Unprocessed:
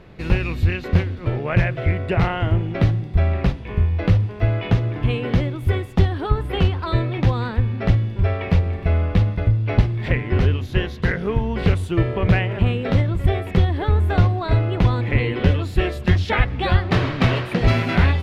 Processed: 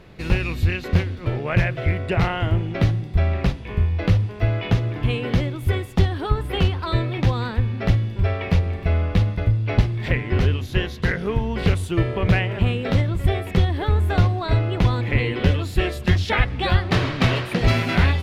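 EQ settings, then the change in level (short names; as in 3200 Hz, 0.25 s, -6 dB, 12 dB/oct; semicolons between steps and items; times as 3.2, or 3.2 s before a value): high shelf 3800 Hz +8 dB; -1.5 dB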